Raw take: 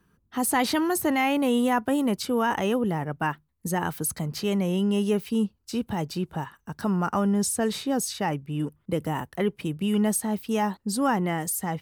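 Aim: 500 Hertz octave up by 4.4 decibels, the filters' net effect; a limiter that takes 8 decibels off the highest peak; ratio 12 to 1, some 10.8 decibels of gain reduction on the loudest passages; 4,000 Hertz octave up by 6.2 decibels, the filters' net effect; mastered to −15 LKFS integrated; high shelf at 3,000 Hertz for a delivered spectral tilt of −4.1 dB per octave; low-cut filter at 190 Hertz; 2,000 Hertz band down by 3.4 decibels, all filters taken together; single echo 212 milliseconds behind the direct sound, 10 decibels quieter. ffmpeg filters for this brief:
ffmpeg -i in.wav -af "highpass=190,equalizer=frequency=500:width_type=o:gain=5.5,equalizer=frequency=2000:width_type=o:gain=-8.5,highshelf=frequency=3000:gain=8,equalizer=frequency=4000:width_type=o:gain=4.5,acompressor=threshold=-27dB:ratio=12,alimiter=limit=-24dB:level=0:latency=1,aecho=1:1:212:0.316,volume=18dB" out.wav

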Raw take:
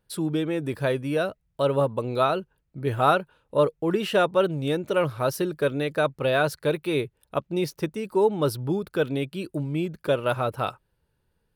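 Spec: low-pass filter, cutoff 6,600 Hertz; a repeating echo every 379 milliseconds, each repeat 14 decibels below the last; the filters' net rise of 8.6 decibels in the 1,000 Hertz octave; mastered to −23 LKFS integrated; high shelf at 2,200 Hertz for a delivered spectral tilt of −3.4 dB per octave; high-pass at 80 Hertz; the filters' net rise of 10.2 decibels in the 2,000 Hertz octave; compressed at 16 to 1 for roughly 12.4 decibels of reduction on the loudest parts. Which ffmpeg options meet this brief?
ffmpeg -i in.wav -af "highpass=80,lowpass=6600,equalizer=frequency=1000:width_type=o:gain=7.5,equalizer=frequency=2000:width_type=o:gain=8,highshelf=frequency=2200:gain=6.5,acompressor=threshold=-18dB:ratio=16,aecho=1:1:379|758:0.2|0.0399,volume=2.5dB" out.wav

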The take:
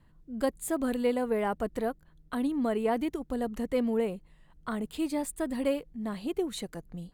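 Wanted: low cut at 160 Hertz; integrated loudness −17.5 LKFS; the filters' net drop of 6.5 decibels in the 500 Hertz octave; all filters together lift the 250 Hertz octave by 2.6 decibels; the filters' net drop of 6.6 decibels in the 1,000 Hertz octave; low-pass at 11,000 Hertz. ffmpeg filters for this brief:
ffmpeg -i in.wav -af "highpass=160,lowpass=11000,equalizer=frequency=250:width_type=o:gain=6,equalizer=frequency=500:width_type=o:gain=-8,equalizer=frequency=1000:width_type=o:gain=-6,volume=14dB" out.wav

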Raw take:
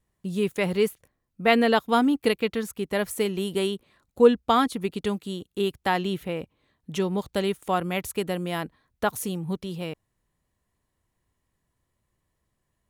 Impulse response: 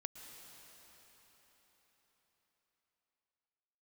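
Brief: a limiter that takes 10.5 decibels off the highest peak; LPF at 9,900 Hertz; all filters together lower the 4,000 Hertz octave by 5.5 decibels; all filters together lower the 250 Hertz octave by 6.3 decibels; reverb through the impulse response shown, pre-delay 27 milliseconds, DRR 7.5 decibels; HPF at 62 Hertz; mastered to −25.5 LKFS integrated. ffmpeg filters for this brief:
-filter_complex "[0:a]highpass=62,lowpass=9900,equalizer=frequency=250:width_type=o:gain=-8,equalizer=frequency=4000:width_type=o:gain=-8,alimiter=limit=-18dB:level=0:latency=1,asplit=2[link_01][link_02];[1:a]atrim=start_sample=2205,adelay=27[link_03];[link_02][link_03]afir=irnorm=-1:irlink=0,volume=-4.5dB[link_04];[link_01][link_04]amix=inputs=2:normalize=0,volume=5.5dB"

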